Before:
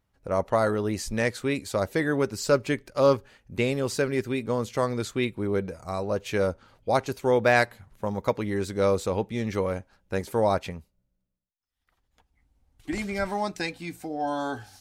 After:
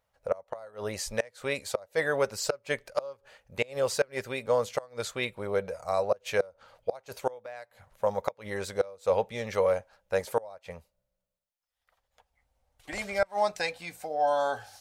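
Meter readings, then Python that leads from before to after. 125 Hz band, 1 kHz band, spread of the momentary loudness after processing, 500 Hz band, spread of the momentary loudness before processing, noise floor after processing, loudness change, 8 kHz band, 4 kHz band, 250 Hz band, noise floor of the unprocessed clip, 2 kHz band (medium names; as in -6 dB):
-12.0 dB, -3.0 dB, 10 LU, -3.0 dB, 10 LU, -83 dBFS, -4.0 dB, -1.0 dB, -2.0 dB, -14.0 dB, -77 dBFS, -4.0 dB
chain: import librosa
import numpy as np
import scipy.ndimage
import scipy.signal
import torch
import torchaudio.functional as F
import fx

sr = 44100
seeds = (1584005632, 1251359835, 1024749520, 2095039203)

y = fx.low_shelf_res(x, sr, hz=420.0, db=-8.5, q=3.0)
y = fx.gate_flip(y, sr, shuts_db=-14.0, range_db=-26)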